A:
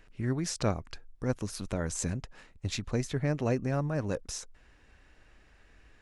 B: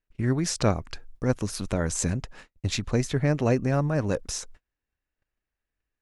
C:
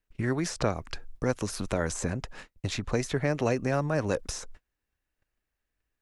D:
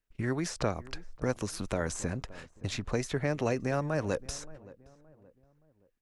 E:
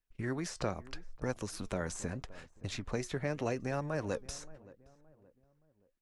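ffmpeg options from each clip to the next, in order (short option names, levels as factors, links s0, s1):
-af "agate=range=0.02:threshold=0.00282:ratio=16:detection=peak,volume=2"
-filter_complex "[0:a]acrossover=split=360|1900[s0][s1][s2];[s0]acompressor=threshold=0.0224:ratio=4[s3];[s1]acompressor=threshold=0.0398:ratio=4[s4];[s2]acompressor=threshold=0.0112:ratio=4[s5];[s3][s4][s5]amix=inputs=3:normalize=0,volume=1.33"
-filter_complex "[0:a]asplit=2[s0][s1];[s1]adelay=572,lowpass=f=1200:p=1,volume=0.112,asplit=2[s2][s3];[s3]adelay=572,lowpass=f=1200:p=1,volume=0.41,asplit=2[s4][s5];[s5]adelay=572,lowpass=f=1200:p=1,volume=0.41[s6];[s0][s2][s4][s6]amix=inputs=4:normalize=0,volume=0.708"
-af "flanger=delay=1.1:depth=4.5:regen=80:speed=0.8:shape=sinusoidal"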